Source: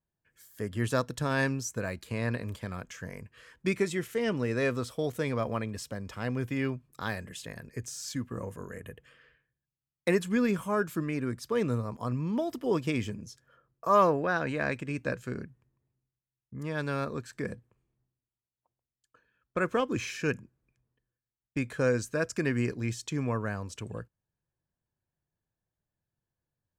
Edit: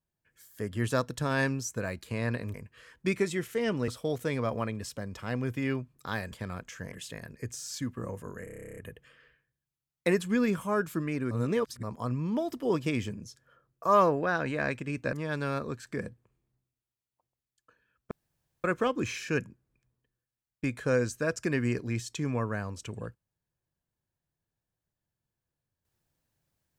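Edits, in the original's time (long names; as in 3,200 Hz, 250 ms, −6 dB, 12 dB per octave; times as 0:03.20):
0:02.54–0:03.14: move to 0:07.26
0:04.48–0:04.82: remove
0:08.78: stutter 0.03 s, 12 plays
0:11.32–0:11.84: reverse
0:15.14–0:16.59: remove
0:19.57: splice in room tone 0.53 s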